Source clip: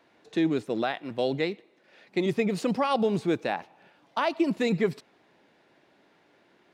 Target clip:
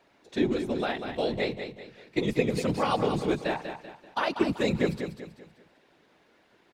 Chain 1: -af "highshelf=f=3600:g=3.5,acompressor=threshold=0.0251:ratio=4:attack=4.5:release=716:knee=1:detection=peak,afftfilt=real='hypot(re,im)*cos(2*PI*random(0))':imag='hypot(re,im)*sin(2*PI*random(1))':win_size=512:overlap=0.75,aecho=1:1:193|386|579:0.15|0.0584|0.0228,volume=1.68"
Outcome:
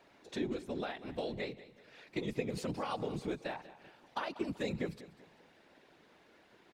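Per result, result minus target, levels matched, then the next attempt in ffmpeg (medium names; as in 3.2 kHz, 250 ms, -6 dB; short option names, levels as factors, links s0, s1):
compression: peak gain reduction +12 dB; echo-to-direct -8.5 dB
-af "highshelf=f=3600:g=3.5,afftfilt=real='hypot(re,im)*cos(2*PI*random(0))':imag='hypot(re,im)*sin(2*PI*random(1))':win_size=512:overlap=0.75,aecho=1:1:193|386|579:0.15|0.0584|0.0228,volume=1.68"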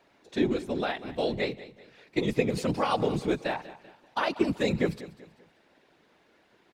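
echo-to-direct -8.5 dB
-af "highshelf=f=3600:g=3.5,afftfilt=real='hypot(re,im)*cos(2*PI*random(0))':imag='hypot(re,im)*sin(2*PI*random(1))':win_size=512:overlap=0.75,aecho=1:1:193|386|579|772:0.398|0.155|0.0606|0.0236,volume=1.68"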